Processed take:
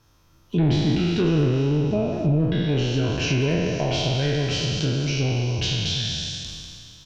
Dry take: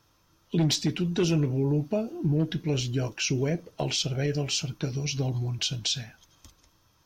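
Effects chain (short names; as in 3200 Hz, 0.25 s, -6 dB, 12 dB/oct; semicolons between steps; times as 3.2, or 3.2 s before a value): spectral trails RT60 2.37 s; low shelf 110 Hz +10 dB; treble ducked by the level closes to 2200 Hz, closed at -16 dBFS; speakerphone echo 0.2 s, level -9 dB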